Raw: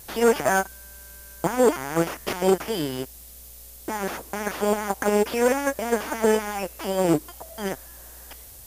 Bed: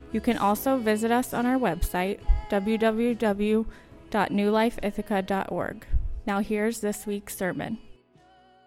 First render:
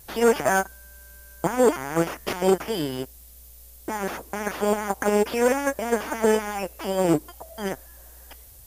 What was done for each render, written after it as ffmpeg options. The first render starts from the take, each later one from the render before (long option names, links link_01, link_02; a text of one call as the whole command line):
ffmpeg -i in.wav -af "afftdn=noise_reduction=6:noise_floor=-45" out.wav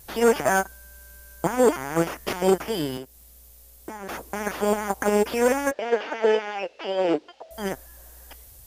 ffmpeg -i in.wav -filter_complex "[0:a]asettb=1/sr,asplit=3[link_01][link_02][link_03];[link_01]atrim=end=2.974[link_04];[link_02]atrim=start=2.97:end=4.09,asetpts=PTS-STARTPTS,afade=type=in:duration=0.004:curve=qsin,afade=type=out:start_time=1.116:duration=0.004:curve=qsin,acrossover=split=170|1800[link_05][link_06][link_07];[link_05]acompressor=threshold=-52dB:ratio=4[link_08];[link_06]acompressor=threshold=-36dB:ratio=4[link_09];[link_07]acompressor=threshold=-49dB:ratio=4[link_10];[link_08][link_09][link_10]amix=inputs=3:normalize=0[link_11];[link_03]atrim=start=4.086[link_12];[link_04][link_11]acrossfade=duration=0.004:curve1=hsin:curve2=qsin[link_13];[link_13][link_12]acrossfade=duration=0.004:curve1=qsin:curve2=hsin,asettb=1/sr,asplit=3[link_14][link_15][link_16];[link_14]atrim=end=5.714[link_17];[link_15]atrim=start=5.71:end=7.51,asetpts=PTS-STARTPTS,afade=type=in:duration=0.004:curve=qsin,afade=type=out:start_time=1.796:duration=0.004:curve=qsin,highpass=370,equalizer=frequency=480:width_type=q:width=4:gain=4,equalizer=frequency=1100:width_type=q:width=4:gain=-6,equalizer=frequency=2800:width_type=q:width=4:gain=5,lowpass=frequency=4700:width=0.5412,lowpass=frequency=4700:width=1.3066[link_18];[link_16]atrim=start=7.506[link_19];[link_17][link_18]acrossfade=duration=0.004:curve1=hsin:curve2=qsin[link_20];[link_20][link_19]acrossfade=duration=0.004:curve1=qsin:curve2=hsin" out.wav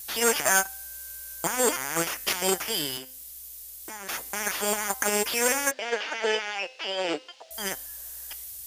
ffmpeg -i in.wav -af "tiltshelf=frequency=1400:gain=-10,bandreject=frequency=258:width_type=h:width=4,bandreject=frequency=516:width_type=h:width=4,bandreject=frequency=774:width_type=h:width=4,bandreject=frequency=1032:width_type=h:width=4,bandreject=frequency=1290:width_type=h:width=4,bandreject=frequency=1548:width_type=h:width=4,bandreject=frequency=1806:width_type=h:width=4,bandreject=frequency=2064:width_type=h:width=4,bandreject=frequency=2322:width_type=h:width=4,bandreject=frequency=2580:width_type=h:width=4,bandreject=frequency=2838:width_type=h:width=4,bandreject=frequency=3096:width_type=h:width=4,bandreject=frequency=3354:width_type=h:width=4,bandreject=frequency=3612:width_type=h:width=4,bandreject=frequency=3870:width_type=h:width=4,bandreject=frequency=4128:width_type=h:width=4,bandreject=frequency=4386:width_type=h:width=4,bandreject=frequency=4644:width_type=h:width=4,bandreject=frequency=4902:width_type=h:width=4,bandreject=frequency=5160:width_type=h:width=4,bandreject=frequency=5418:width_type=h:width=4" out.wav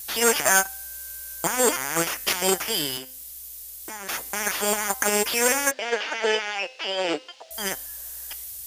ffmpeg -i in.wav -af "volume=3dB" out.wav